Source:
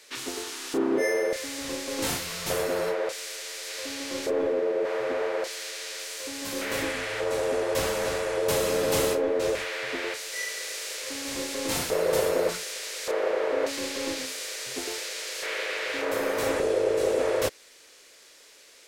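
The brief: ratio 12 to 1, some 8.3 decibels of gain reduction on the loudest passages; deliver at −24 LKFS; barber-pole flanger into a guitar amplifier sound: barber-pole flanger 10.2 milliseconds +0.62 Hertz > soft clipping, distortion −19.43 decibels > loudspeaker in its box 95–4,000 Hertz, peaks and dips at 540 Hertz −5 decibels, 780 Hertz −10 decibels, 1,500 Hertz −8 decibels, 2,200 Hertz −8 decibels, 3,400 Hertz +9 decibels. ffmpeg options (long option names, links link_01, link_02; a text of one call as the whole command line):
ffmpeg -i in.wav -filter_complex "[0:a]acompressor=threshold=-29dB:ratio=12,asplit=2[link_01][link_02];[link_02]adelay=10.2,afreqshift=0.62[link_03];[link_01][link_03]amix=inputs=2:normalize=1,asoftclip=threshold=-28.5dB,highpass=95,equalizer=frequency=540:width_type=q:width=4:gain=-5,equalizer=frequency=780:width_type=q:width=4:gain=-10,equalizer=frequency=1500:width_type=q:width=4:gain=-8,equalizer=frequency=2200:width_type=q:width=4:gain=-8,equalizer=frequency=3400:width_type=q:width=4:gain=9,lowpass=frequency=4000:width=0.5412,lowpass=frequency=4000:width=1.3066,volume=16dB" out.wav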